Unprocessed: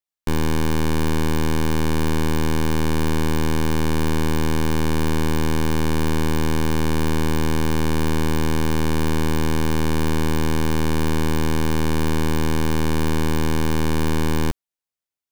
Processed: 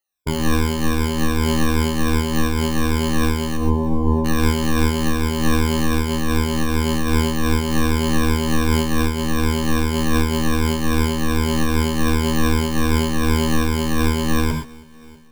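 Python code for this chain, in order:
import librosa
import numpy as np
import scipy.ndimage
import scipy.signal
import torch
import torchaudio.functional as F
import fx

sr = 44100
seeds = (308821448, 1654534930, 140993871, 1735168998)

p1 = fx.spec_ripple(x, sr, per_octave=1.7, drift_hz=-2.6, depth_db=22)
p2 = 10.0 ** (-22.5 / 20.0) * (np.abs((p1 / 10.0 ** (-22.5 / 20.0) + 3.0) % 4.0 - 2.0) - 1.0)
p3 = p1 + (p2 * librosa.db_to_amplitude(-5.0))
p4 = fx.brickwall_lowpass(p3, sr, high_hz=1100.0, at=(3.56, 4.24), fade=0.02)
p5 = p4 + fx.echo_feedback(p4, sr, ms=321, feedback_pct=60, wet_db=-23, dry=0)
p6 = fx.rev_gated(p5, sr, seeds[0], gate_ms=150, shape='flat', drr_db=5.0)
y = fx.am_noise(p6, sr, seeds[1], hz=5.7, depth_pct=60)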